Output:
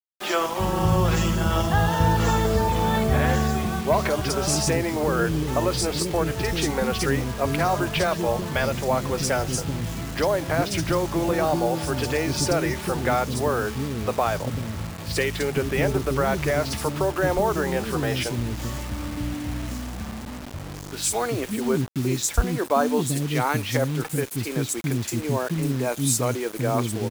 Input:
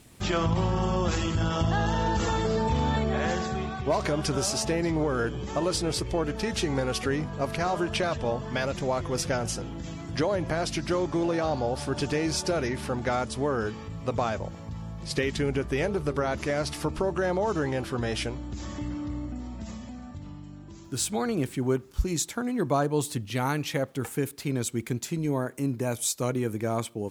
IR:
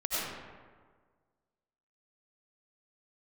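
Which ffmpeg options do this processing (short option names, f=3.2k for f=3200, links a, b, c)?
-filter_complex "[0:a]acrossover=split=320|4400[a][b][c];[c]adelay=50[d];[a]adelay=390[e];[e][b][d]amix=inputs=3:normalize=0,acrusher=bits=6:mix=0:aa=0.000001,volume=5.5dB"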